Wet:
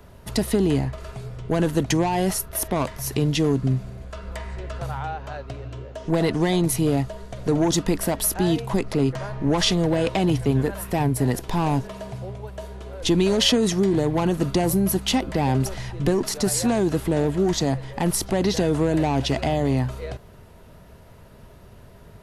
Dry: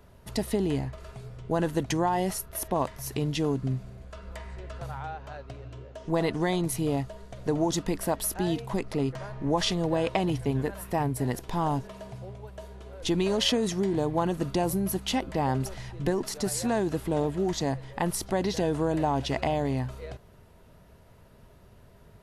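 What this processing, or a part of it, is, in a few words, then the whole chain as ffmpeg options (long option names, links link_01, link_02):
one-band saturation: -filter_complex "[0:a]acrossover=split=360|3000[link_01][link_02][link_03];[link_02]asoftclip=type=tanh:threshold=-29dB[link_04];[link_01][link_04][link_03]amix=inputs=3:normalize=0,volume=7.5dB"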